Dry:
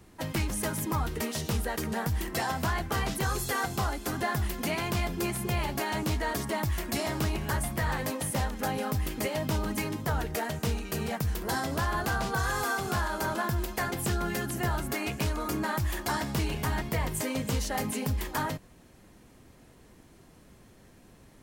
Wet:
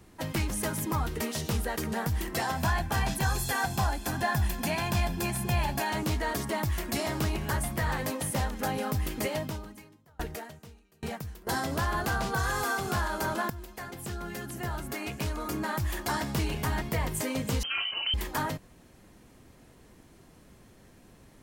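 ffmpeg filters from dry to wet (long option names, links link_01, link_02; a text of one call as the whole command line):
ffmpeg -i in.wav -filter_complex "[0:a]asettb=1/sr,asplit=3[link_01][link_02][link_03];[link_01]atrim=end=2.574[link_04];[link_02]atrim=start=2.57:end=5.9,asetpts=PTS-STARTPTS,afade=type=in:duration=0.004:curve=qsin,afade=type=out:start_time=3.326:duration=0.004:curve=qsin,aecho=1:1:1.2:0.48,atrim=end_sample=146853[link_05];[link_03]atrim=start=5.896[link_06];[link_04][link_05]acrossfade=duration=0.004:curve1=hsin:curve2=qsin[link_07];[link_07][link_06]acrossfade=duration=0.004:curve1=qsin:curve2=hsin,asettb=1/sr,asplit=3[link_08][link_09][link_10];[link_08]atrim=end=9.364[link_11];[link_09]atrim=start=9.36:end=11.47,asetpts=PTS-STARTPTS,afade=type=in:duration=0.004:curve=qsin,afade=type=out:start_time=2.106:duration=0.004:curve=qsin,aeval=exprs='val(0)*pow(10,-35*if(lt(mod(1.2*n/s,1),2*abs(1.2)/1000),1-mod(1.2*n/s,1)/(2*abs(1.2)/1000),(mod(1.2*n/s,1)-2*abs(1.2)/1000)/(1-2*abs(1.2)/1000))/20)':channel_layout=same[link_12];[link_10]atrim=start=11.466[link_13];[link_11][link_12]acrossfade=duration=0.004:curve1=hsin:curve2=qsin[link_14];[link_14][link_13]acrossfade=duration=0.004:curve1=qsin:curve2=hsin,asettb=1/sr,asplit=3[link_15][link_16][link_17];[link_15]atrim=end=17.634[link_18];[link_16]atrim=start=17.63:end=18.14,asetpts=PTS-STARTPTS,afade=type=in:duration=0.004:curve=qsin,afade=type=out:start_time=0.506:duration=0.004:curve=qsin,lowpass=frequency=2700:width_type=q:width=0.5098,lowpass=frequency=2700:width_type=q:width=0.6013,lowpass=frequency=2700:width_type=q:width=0.9,lowpass=frequency=2700:width_type=q:width=2.563,afreqshift=-3200[link_19];[link_17]atrim=start=18.136[link_20];[link_18][link_19]acrossfade=duration=0.004:curve1=hsin:curve2=qsin[link_21];[link_21][link_20]acrossfade=duration=0.004:curve1=qsin:curve2=hsin,asplit=2[link_22][link_23];[link_22]atrim=end=13.5,asetpts=PTS-STARTPTS,afade=type=out:start_time=13.496:duration=0.004:curve=hsin:silence=0.237137[link_24];[link_23]atrim=start=13.5,asetpts=PTS-STARTPTS,afade=type=in:duration=2.71:silence=0.237137[link_25];[link_24][link_25]concat=n=2:v=0:a=1" out.wav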